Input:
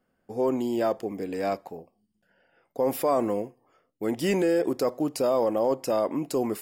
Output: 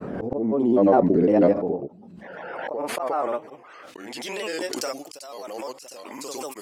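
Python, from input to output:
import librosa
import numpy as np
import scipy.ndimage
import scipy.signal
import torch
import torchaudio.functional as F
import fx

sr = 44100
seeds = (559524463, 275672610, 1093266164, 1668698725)

p1 = fx.granulator(x, sr, seeds[0], grain_ms=100.0, per_s=20.0, spray_ms=100.0, spread_st=3)
p2 = fx.rider(p1, sr, range_db=3, speed_s=2.0)
p3 = p1 + (p2 * librosa.db_to_amplitude(0.0))
p4 = fx.filter_sweep_bandpass(p3, sr, from_hz=290.0, to_hz=6900.0, start_s=1.63, end_s=4.97, q=0.71)
p5 = fx.auto_swell(p4, sr, attack_ms=755.0)
p6 = fx.pre_swell(p5, sr, db_per_s=24.0)
y = p6 * librosa.db_to_amplitude(7.5)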